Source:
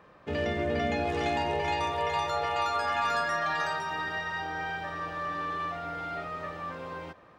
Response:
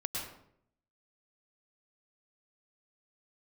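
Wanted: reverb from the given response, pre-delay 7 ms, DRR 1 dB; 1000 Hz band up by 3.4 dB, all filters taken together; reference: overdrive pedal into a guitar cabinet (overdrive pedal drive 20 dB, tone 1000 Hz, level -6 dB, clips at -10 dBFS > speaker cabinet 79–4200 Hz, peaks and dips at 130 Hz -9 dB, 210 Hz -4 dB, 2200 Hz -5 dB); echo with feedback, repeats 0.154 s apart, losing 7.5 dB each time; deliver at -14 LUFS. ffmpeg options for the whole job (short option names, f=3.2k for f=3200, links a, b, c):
-filter_complex "[0:a]equalizer=f=1k:t=o:g=4.5,aecho=1:1:154|308|462|616|770:0.422|0.177|0.0744|0.0312|0.0131,asplit=2[a][b];[1:a]atrim=start_sample=2205,adelay=7[c];[b][c]afir=irnorm=-1:irlink=0,volume=-4dB[d];[a][d]amix=inputs=2:normalize=0,asplit=2[e][f];[f]highpass=f=720:p=1,volume=20dB,asoftclip=type=tanh:threshold=-10dB[g];[e][g]amix=inputs=2:normalize=0,lowpass=f=1k:p=1,volume=-6dB,highpass=79,equalizer=f=130:t=q:w=4:g=-9,equalizer=f=210:t=q:w=4:g=-4,equalizer=f=2.2k:t=q:w=4:g=-5,lowpass=f=4.2k:w=0.5412,lowpass=f=4.2k:w=1.3066,volume=7dB"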